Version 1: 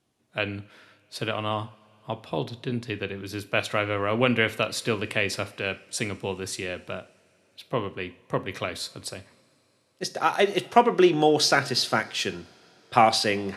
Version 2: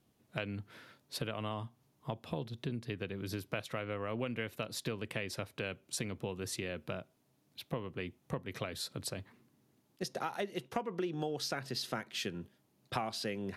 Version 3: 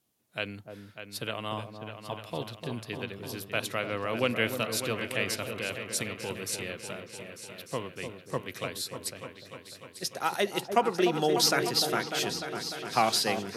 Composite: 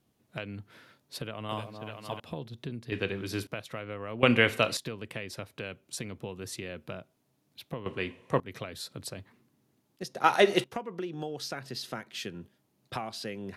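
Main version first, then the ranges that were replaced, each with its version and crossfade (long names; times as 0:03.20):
2
0:01.49–0:02.20: punch in from 3
0:02.92–0:03.47: punch in from 1
0:04.23–0:04.77: punch in from 1
0:07.86–0:08.40: punch in from 1
0:10.24–0:10.64: punch in from 1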